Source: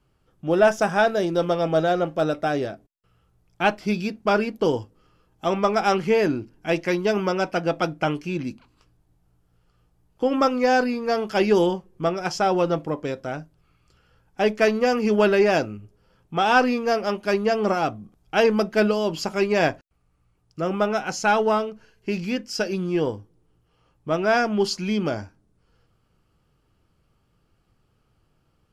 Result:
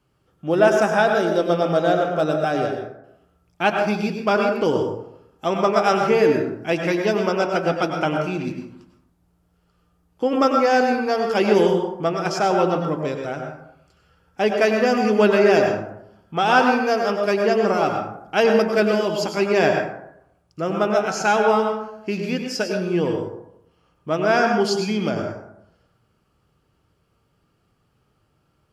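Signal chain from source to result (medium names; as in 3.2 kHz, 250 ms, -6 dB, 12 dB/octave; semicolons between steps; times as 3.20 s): high-pass 100 Hz 6 dB/octave; plate-style reverb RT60 0.78 s, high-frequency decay 0.45×, pre-delay 85 ms, DRR 3 dB; trim +1 dB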